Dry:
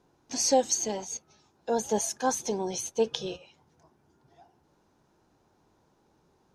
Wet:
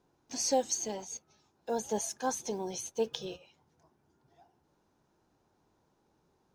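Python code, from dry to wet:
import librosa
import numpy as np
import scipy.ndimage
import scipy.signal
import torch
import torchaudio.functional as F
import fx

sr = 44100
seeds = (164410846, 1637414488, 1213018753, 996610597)

y = fx.block_float(x, sr, bits=7)
y = y * librosa.db_to_amplitude(-5.5)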